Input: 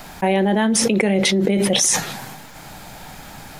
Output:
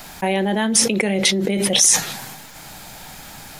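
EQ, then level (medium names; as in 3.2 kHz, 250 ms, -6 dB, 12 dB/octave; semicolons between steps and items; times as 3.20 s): treble shelf 2.4 kHz +7.5 dB; -3.0 dB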